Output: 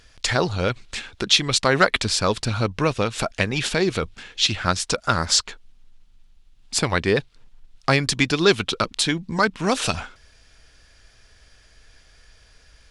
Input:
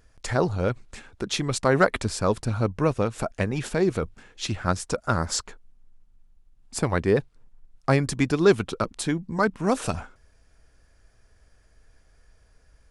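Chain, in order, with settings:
parametric band 3,600 Hz +14.5 dB 2 octaves
in parallel at 0 dB: downward compressor, threshold −26 dBFS, peak gain reduction 15.5 dB
on the sum: level −2.5 dB

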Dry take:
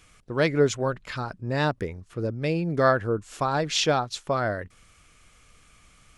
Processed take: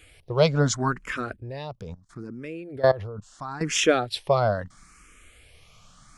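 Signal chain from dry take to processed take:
0:01.36–0:03.61: output level in coarse steps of 19 dB
frequency shifter mixed with the dry sound +0.75 Hz
level +6 dB

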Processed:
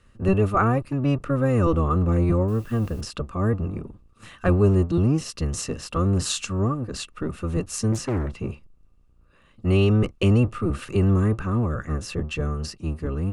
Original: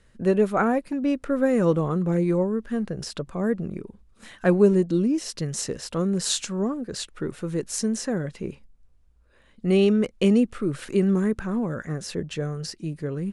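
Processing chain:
sub-octave generator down 1 octave, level +4 dB
in parallel at +1 dB: brickwall limiter −12 dBFS, peak gain reduction 8 dB
0:02.48–0:03.01: on the sum: bit-depth reduction 8 bits, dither triangular
hollow resonant body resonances 1,200/2,700 Hz, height 13 dB, ringing for 25 ms
0:07.92–0:08.40: highs frequency-modulated by the lows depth 0.98 ms
level −8 dB

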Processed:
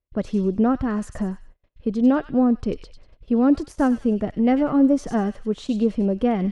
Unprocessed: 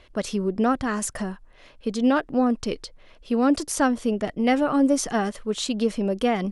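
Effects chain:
spectral tilt −3.5 dB per octave
delay with a high-pass on its return 96 ms, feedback 35%, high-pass 2,600 Hz, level −5.5 dB
noise gate −30 dBFS, range −36 dB
high-pass filter 61 Hz 6 dB per octave
high-shelf EQ 5,600 Hz −4.5 dB
level −3 dB

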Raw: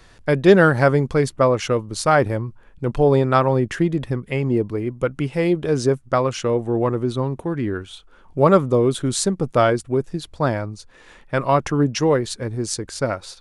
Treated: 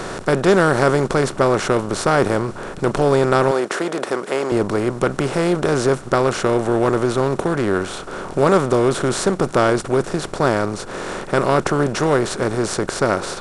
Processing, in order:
compressor on every frequency bin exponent 0.4
0:03.51–0:04.52: high-pass filter 350 Hz 12 dB per octave
level −5 dB

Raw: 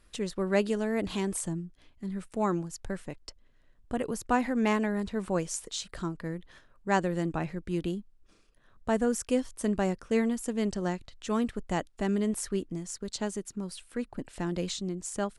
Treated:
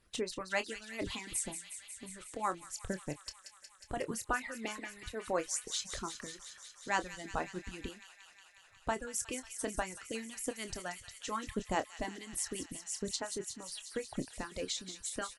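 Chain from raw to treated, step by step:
harmonic and percussive parts rebalanced harmonic −17 dB
reverb reduction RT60 1.5 s
double-tracking delay 27 ms −11.5 dB
delay with a high-pass on its return 181 ms, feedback 80%, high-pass 2,200 Hz, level −9 dB

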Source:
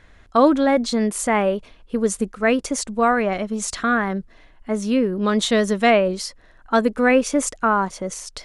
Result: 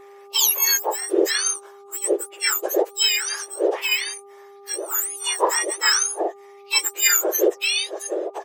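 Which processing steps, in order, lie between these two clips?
frequency axis turned over on the octave scale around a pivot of 1,900 Hz
downsampling to 32,000 Hz
hum with harmonics 400 Hz, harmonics 3, −48 dBFS −7 dB per octave
level +2.5 dB

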